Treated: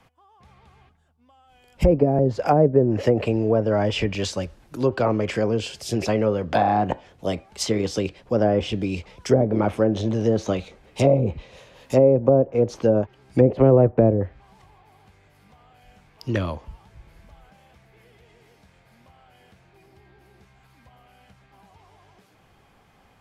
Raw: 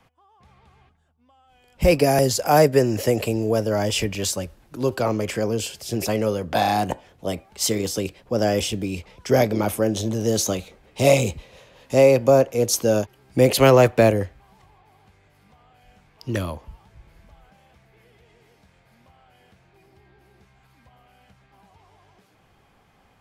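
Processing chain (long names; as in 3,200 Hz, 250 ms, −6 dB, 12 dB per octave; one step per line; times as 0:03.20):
treble cut that deepens with the level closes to 500 Hz, closed at −13 dBFS
level +1.5 dB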